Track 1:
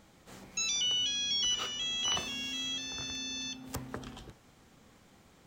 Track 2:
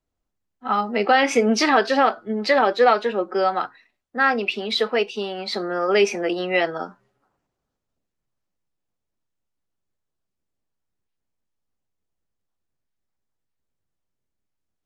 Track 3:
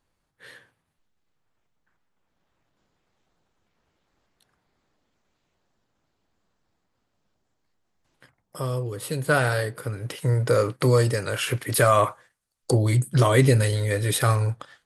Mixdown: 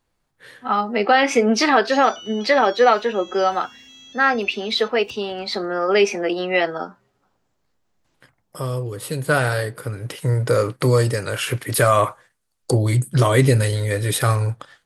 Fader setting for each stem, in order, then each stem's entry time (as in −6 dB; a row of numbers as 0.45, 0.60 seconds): −9.0, +1.5, +2.5 decibels; 1.35, 0.00, 0.00 seconds